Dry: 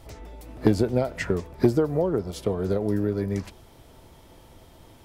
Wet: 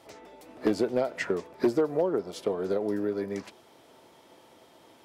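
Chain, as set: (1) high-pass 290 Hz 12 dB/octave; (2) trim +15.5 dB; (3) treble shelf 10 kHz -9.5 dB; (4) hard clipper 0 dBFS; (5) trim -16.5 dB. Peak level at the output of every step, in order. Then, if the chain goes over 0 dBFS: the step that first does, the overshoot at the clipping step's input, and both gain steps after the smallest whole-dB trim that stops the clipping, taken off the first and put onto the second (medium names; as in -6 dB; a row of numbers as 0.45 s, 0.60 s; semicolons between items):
-7.5 dBFS, +8.0 dBFS, +8.0 dBFS, 0.0 dBFS, -16.5 dBFS; step 2, 8.0 dB; step 2 +7.5 dB, step 5 -8.5 dB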